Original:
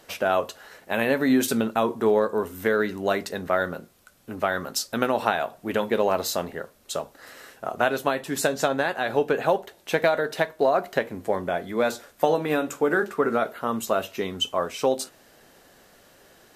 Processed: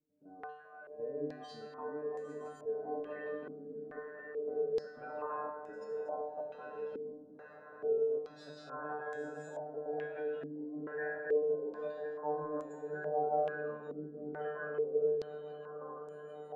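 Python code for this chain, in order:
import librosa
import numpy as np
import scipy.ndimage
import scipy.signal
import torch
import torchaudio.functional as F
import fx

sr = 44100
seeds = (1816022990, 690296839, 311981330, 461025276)

p1 = fx.reverse_delay_fb(x, sr, ms=530, feedback_pct=83, wet_db=-5.5)
p2 = fx.transient(p1, sr, attack_db=-7, sustain_db=4)
p3 = fx.dynamic_eq(p2, sr, hz=480.0, q=2.3, threshold_db=-37.0, ratio=4.0, max_db=6)
p4 = fx.hpss(p3, sr, part='percussive', gain_db=-13)
p5 = fx.low_shelf(p4, sr, hz=190.0, db=-2.5)
p6 = fx.spec_gate(p5, sr, threshold_db=-25, keep='strong')
p7 = fx.level_steps(p6, sr, step_db=13)
p8 = fx.comb_fb(p7, sr, f0_hz=150.0, decay_s=0.66, harmonics='all', damping=0.0, mix_pct=100)
p9 = p8 + fx.echo_swell(p8, sr, ms=161, loudest=5, wet_db=-17.5, dry=0)
p10 = fx.filter_held_lowpass(p9, sr, hz=2.3, low_hz=280.0, high_hz=7300.0)
y = F.gain(torch.from_numpy(p10), -1.0).numpy()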